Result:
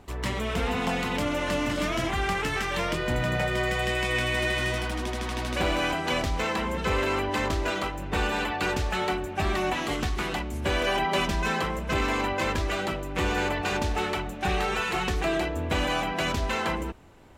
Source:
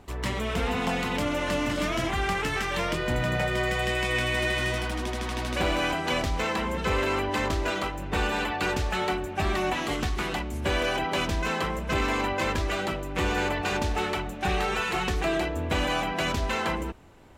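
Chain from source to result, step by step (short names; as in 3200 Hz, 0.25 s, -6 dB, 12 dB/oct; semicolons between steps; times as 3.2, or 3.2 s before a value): 10.86–11.61 comb 5.1 ms, depth 55%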